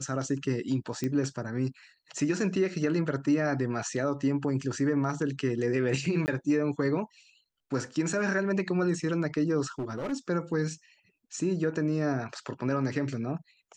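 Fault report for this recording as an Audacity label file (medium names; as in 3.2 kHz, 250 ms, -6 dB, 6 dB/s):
1.040000	1.040000	pop -18 dBFS
6.260000	6.280000	dropout 19 ms
9.790000	10.130000	clipped -29.5 dBFS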